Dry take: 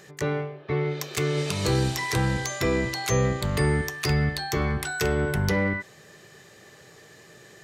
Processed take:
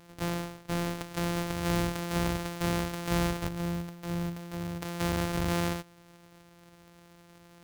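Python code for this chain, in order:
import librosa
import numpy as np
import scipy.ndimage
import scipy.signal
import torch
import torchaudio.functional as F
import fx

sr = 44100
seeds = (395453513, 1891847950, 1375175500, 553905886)

y = np.r_[np.sort(x[:len(x) // 256 * 256].reshape(-1, 256), axis=1).ravel(), x[len(x) // 256 * 256:]]
y = fx.comb_fb(y, sr, f0_hz=170.0, decay_s=0.54, harmonics='all', damping=0.0, mix_pct=70, at=(3.47, 4.81), fade=0.02)
y = F.gain(torch.from_numpy(y), -5.5).numpy()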